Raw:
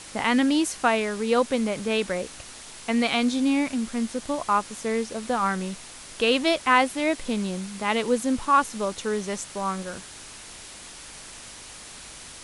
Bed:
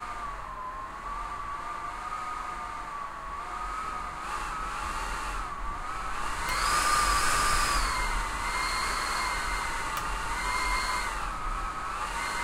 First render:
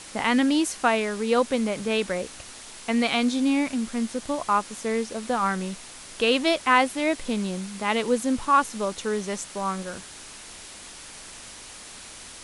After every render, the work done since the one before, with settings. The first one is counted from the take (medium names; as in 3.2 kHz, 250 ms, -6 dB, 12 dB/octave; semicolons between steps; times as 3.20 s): de-hum 50 Hz, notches 3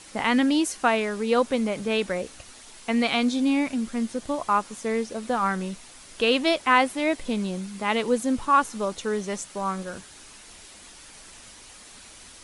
noise reduction 6 dB, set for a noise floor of -43 dBFS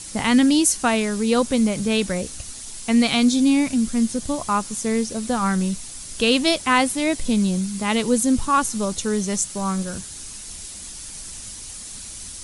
tone controls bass +13 dB, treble +14 dB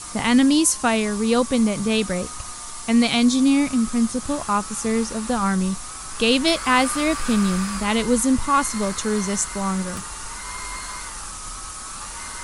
add bed -5 dB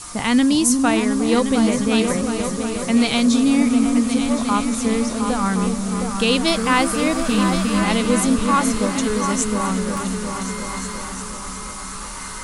delay with an opening low-pass 357 ms, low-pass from 400 Hz, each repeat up 2 oct, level -3 dB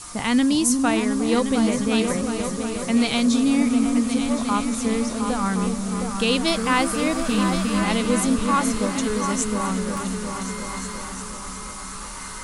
trim -3 dB